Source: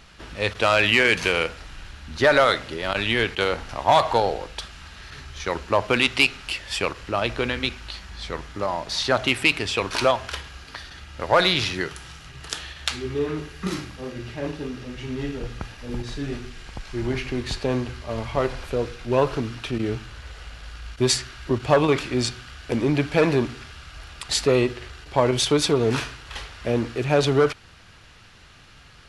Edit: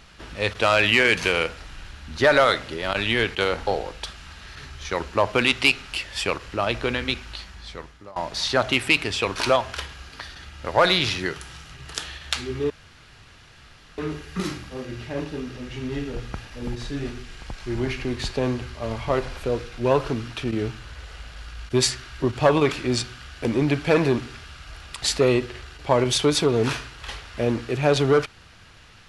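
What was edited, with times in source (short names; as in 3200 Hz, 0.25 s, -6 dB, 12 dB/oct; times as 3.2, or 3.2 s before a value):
3.67–4.22 cut
7.85–8.71 fade out, to -21.5 dB
13.25 insert room tone 1.28 s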